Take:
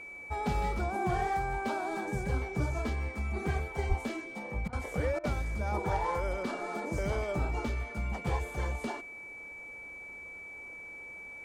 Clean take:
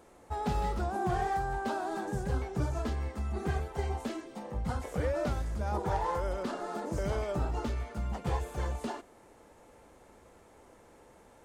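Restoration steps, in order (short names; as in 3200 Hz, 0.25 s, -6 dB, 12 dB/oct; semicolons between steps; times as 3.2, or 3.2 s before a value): notch 2300 Hz, Q 30; de-plosive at 3.88; interpolate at 4.68/5.19, 46 ms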